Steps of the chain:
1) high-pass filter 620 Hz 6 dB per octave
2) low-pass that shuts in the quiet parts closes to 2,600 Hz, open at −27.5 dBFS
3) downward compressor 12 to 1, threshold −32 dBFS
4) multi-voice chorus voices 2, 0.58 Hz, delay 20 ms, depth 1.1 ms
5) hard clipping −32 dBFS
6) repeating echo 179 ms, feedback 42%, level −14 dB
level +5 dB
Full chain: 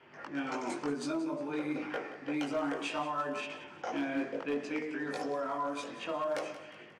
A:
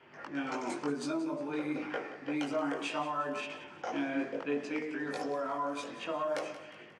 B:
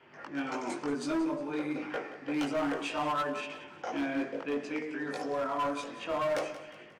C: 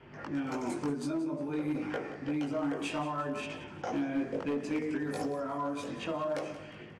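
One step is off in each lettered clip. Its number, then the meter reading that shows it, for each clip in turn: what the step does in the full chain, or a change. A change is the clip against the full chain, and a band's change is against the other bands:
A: 5, distortion level −25 dB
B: 3, average gain reduction 1.5 dB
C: 1, 125 Hz band +9.5 dB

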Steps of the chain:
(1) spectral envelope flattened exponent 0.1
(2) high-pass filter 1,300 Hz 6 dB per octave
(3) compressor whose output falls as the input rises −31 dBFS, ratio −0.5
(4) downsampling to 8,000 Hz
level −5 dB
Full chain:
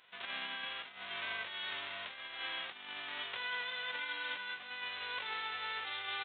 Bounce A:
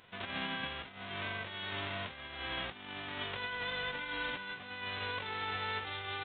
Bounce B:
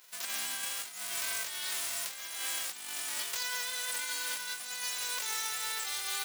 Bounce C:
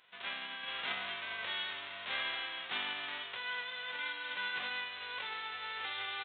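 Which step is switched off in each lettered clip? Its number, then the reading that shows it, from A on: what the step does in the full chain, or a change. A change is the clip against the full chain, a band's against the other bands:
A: 2, 250 Hz band +11.5 dB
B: 4, 4 kHz band +3.5 dB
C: 3, change in crest factor +2.5 dB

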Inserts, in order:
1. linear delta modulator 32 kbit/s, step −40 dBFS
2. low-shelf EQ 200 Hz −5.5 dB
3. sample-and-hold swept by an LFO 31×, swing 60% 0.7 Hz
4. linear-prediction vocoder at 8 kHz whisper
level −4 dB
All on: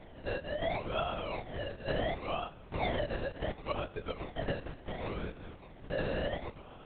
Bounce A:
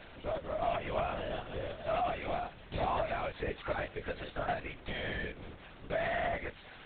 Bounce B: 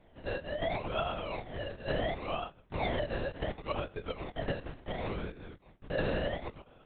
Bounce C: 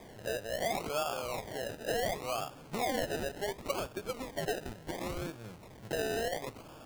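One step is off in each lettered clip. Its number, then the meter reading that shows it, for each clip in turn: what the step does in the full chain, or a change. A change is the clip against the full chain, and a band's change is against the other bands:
3, 1 kHz band +6.0 dB
1, change in crest factor +2.0 dB
4, 125 Hz band −5.5 dB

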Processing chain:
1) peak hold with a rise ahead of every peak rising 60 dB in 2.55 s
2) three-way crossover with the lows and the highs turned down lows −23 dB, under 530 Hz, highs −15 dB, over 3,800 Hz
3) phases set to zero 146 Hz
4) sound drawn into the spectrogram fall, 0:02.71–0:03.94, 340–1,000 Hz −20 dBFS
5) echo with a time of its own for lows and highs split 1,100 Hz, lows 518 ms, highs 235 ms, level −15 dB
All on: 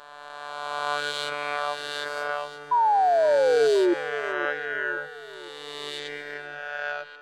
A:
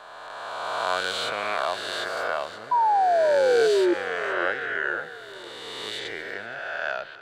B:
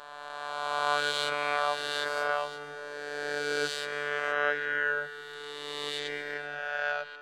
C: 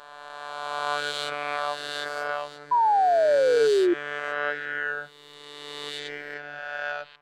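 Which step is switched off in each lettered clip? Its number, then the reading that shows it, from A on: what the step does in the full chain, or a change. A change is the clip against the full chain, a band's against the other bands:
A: 3, 4 kHz band +2.0 dB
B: 4, 250 Hz band −14.0 dB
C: 5, echo-to-direct ratio −13.5 dB to none audible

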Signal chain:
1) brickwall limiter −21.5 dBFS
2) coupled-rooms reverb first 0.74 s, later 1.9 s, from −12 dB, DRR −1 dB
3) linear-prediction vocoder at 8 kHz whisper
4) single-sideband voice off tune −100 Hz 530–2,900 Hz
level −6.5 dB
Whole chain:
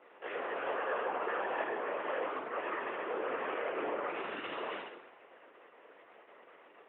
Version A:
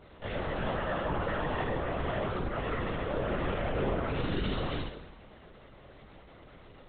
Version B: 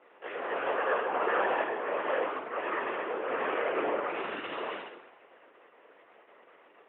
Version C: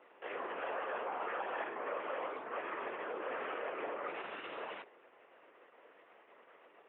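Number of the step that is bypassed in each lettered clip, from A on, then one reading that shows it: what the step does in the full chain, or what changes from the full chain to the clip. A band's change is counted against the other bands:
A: 4, 250 Hz band +10.0 dB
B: 1, average gain reduction 3.0 dB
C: 2, change in integrated loudness −4.0 LU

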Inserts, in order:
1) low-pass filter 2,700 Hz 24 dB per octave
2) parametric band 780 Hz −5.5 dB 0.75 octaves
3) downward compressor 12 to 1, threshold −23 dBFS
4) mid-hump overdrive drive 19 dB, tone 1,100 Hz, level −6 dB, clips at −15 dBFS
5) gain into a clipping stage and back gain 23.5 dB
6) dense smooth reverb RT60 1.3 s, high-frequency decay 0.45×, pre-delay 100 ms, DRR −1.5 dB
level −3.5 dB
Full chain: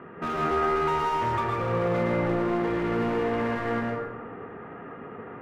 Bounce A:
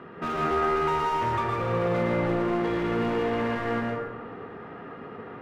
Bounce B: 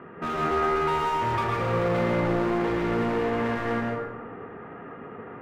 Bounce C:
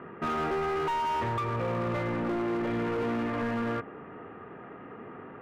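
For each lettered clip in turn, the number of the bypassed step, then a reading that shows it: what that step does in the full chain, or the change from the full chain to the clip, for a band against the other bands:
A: 1, 4 kHz band +1.5 dB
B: 3, average gain reduction 2.5 dB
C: 6, change in crest factor −9.0 dB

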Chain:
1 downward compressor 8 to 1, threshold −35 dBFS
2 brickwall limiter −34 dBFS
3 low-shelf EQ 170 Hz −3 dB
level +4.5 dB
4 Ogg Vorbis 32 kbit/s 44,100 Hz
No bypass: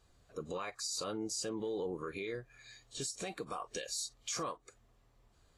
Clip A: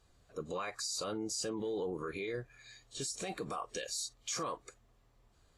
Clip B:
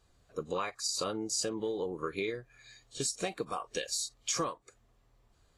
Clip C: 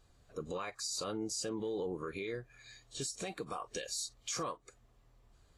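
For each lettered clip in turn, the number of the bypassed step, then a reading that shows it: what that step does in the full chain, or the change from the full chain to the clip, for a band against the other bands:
1, average gain reduction 7.0 dB
2, average gain reduction 2.0 dB
3, 125 Hz band +1.5 dB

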